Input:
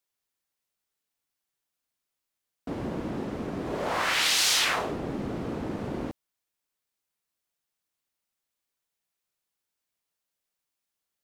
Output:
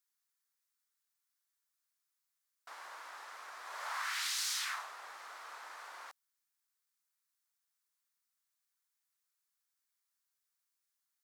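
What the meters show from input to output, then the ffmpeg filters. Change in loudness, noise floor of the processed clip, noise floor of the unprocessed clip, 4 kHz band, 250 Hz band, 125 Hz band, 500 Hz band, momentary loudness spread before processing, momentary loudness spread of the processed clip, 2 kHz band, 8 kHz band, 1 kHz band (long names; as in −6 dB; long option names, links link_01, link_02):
−12.5 dB, below −85 dBFS, −85 dBFS, −13.5 dB, below −40 dB, below −40 dB, −26.0 dB, 15 LU, 17 LU, −11.5 dB, −10.5 dB, −10.5 dB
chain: -af "highpass=frequency=1100:width=0.5412,highpass=frequency=1100:width=1.3066,equalizer=frequency=2800:width_type=o:width=0.87:gain=-7.5,acompressor=threshold=-39dB:ratio=2.5"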